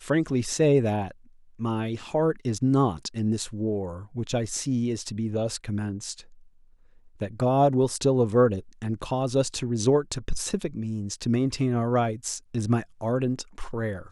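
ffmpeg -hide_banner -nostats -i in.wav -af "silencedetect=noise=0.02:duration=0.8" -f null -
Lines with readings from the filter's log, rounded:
silence_start: 6.20
silence_end: 7.21 | silence_duration: 1.01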